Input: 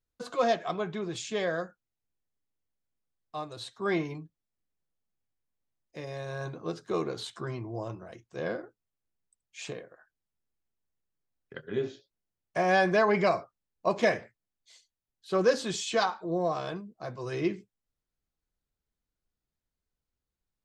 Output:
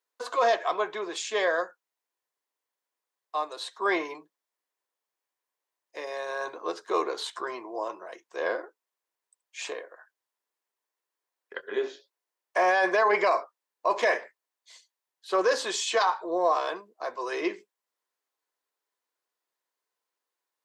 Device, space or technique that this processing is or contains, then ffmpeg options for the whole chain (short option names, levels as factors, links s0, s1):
laptop speaker: -af "highpass=f=390:w=0.5412,highpass=f=390:w=1.3066,equalizer=f=1000:t=o:w=0.32:g=9,equalizer=f=1800:t=o:w=0.34:g=4,alimiter=limit=0.112:level=0:latency=1:release=11,volume=1.68"